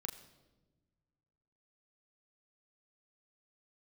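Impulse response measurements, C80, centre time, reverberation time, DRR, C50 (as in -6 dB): 13.0 dB, 19 ms, not exponential, 3.0 dB, 12.5 dB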